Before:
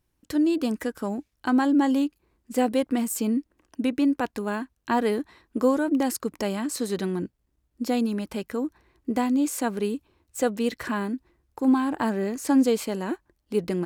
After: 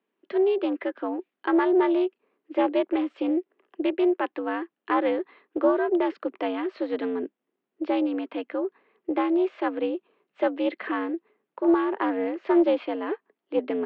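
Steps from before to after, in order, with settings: mistuned SSB +78 Hz 160–3200 Hz; Doppler distortion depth 0.15 ms

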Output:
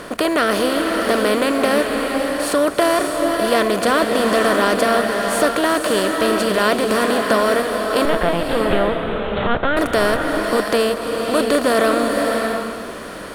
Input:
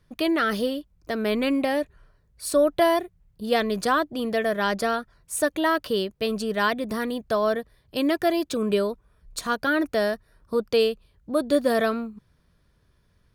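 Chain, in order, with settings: per-bin compression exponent 0.4; 8.05–9.77 LPC vocoder at 8 kHz pitch kept; bloom reverb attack 0.62 s, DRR 2 dB

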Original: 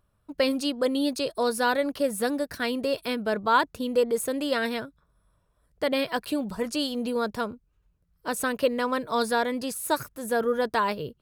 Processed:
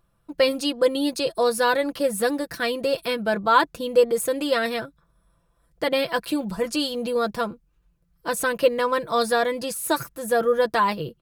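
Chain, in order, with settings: comb 5.9 ms, depth 59%; gain +2.5 dB

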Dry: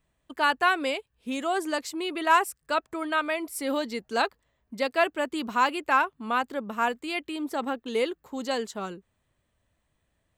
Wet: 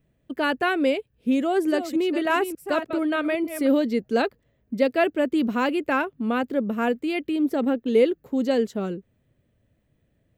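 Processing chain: 1.37–3.67 reverse delay 0.295 s, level -9.5 dB; ten-band EQ 125 Hz +8 dB, 250 Hz +6 dB, 500 Hz +6 dB, 1000 Hz -10 dB, 4000 Hz -4 dB, 8000 Hz -9 dB; gain +3 dB

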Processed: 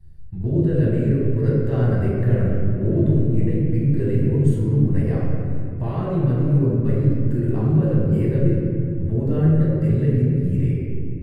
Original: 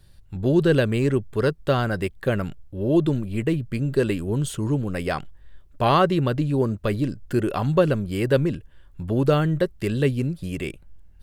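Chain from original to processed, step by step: high shelf 4600 Hz +5.5 dB; 1.45–2.88 sample leveller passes 1; limiter -15.5 dBFS, peak gain reduction 9.5 dB; EQ curve 100 Hz 0 dB, 230 Hz -6 dB, 470 Hz -7 dB, 950 Hz -18 dB, 2000 Hz -15 dB, 3200 Hz -26 dB, 5800 Hz -23 dB; reverb RT60 2.4 s, pre-delay 5 ms, DRR -6.5 dB

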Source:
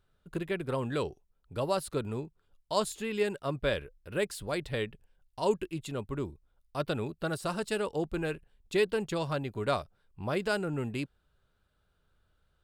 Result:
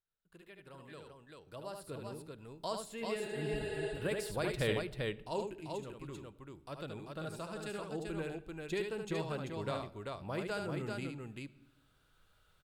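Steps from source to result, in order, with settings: Doppler pass-by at 4.72, 9 m/s, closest 1.5 m; recorder AGC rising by 5.7 dB/s; spectral repair 3.25–3.89, 330–11000 Hz before; tapped delay 74/390 ms -5.5/-4 dB; on a send at -14.5 dB: reverb RT60 0.95 s, pre-delay 6 ms; on the sum: mismatched tape noise reduction encoder only

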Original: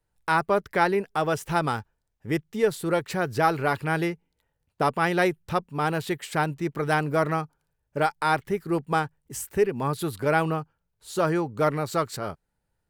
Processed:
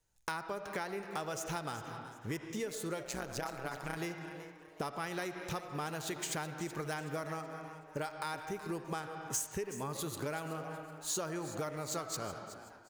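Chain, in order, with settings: median filter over 3 samples; high shelf 3700 Hz +11.5 dB; on a send at -10 dB: reverb RT60 1.3 s, pre-delay 25 ms; 3.03–3.97 on the sum: AM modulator 130 Hz, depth 85%; compressor 12:1, threshold -32 dBFS, peak gain reduction 17.5 dB; bell 6500 Hz +10 dB 0.26 oct; frequency-shifting echo 0.375 s, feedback 38%, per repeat +140 Hz, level -14 dB; gain -3.5 dB

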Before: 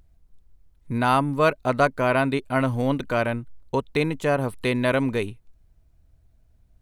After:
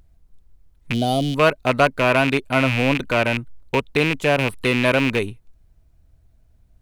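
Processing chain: rattling part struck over -30 dBFS, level -14 dBFS; spectral gain 0.93–1.35, 780–2900 Hz -24 dB; gain +3 dB

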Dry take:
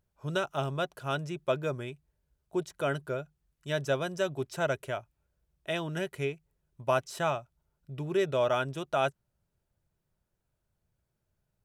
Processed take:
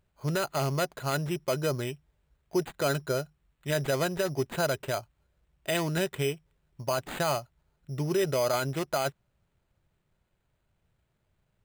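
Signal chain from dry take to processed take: limiter -24 dBFS, peak gain reduction 9.5 dB; careless resampling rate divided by 8×, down none, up hold; gain +5.5 dB

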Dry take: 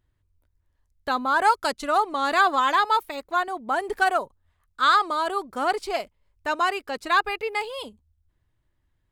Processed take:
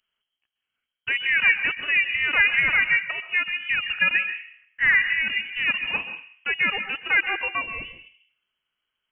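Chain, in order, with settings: HPF 190 Hz 12 dB/oct; reverb RT60 0.70 s, pre-delay 0.117 s, DRR 9.5 dB; inverted band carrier 3200 Hz

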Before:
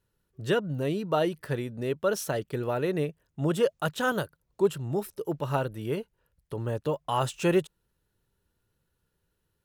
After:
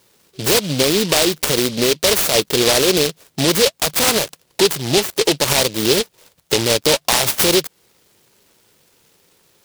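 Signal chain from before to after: compressor 3:1, threshold -32 dBFS, peak gain reduction 11 dB; weighting filter A; maximiser +31 dB; noise-modulated delay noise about 3700 Hz, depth 0.23 ms; gain -4.5 dB

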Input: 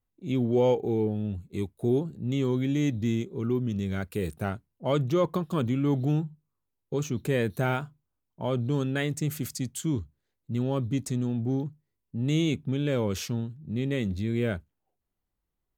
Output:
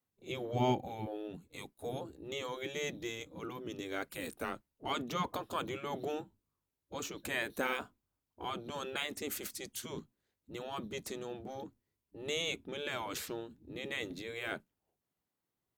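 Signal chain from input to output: spectral gate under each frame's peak -10 dB weak; 4.39–4.89 frequency shift -70 Hz

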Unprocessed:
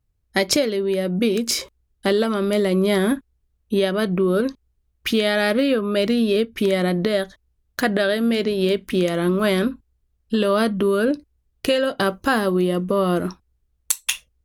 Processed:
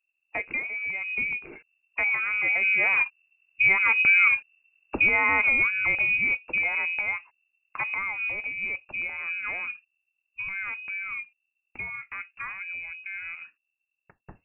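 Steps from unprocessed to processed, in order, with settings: Doppler pass-by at 4.25, 13 m/s, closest 15 m; inverted band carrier 2700 Hz

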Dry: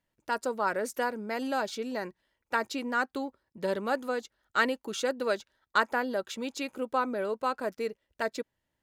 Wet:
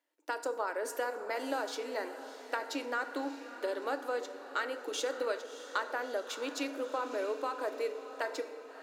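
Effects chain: elliptic high-pass 290 Hz, stop band 40 dB; compressor, threshold -31 dBFS, peak gain reduction 11.5 dB; on a send: diffused feedback echo 0.636 s, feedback 55%, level -12 dB; on the sum: FDN reverb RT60 1.1 s, low-frequency decay 1×, high-frequency decay 0.6×, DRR 9 dB

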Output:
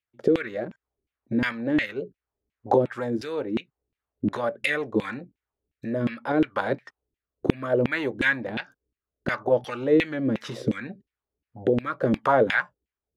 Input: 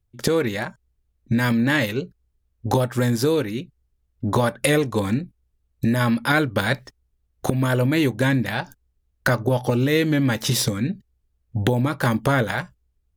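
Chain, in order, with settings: rotary speaker horn 0.7 Hz; LFO band-pass saw down 2.8 Hz 260–2700 Hz; gain +8 dB

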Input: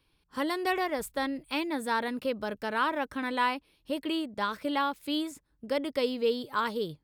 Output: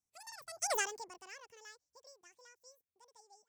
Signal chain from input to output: Doppler pass-by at 1.51, 59 m/s, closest 3.9 m; resonant high shelf 2300 Hz +6.5 dB, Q 3; wide varispeed 2.02×; gain +1 dB

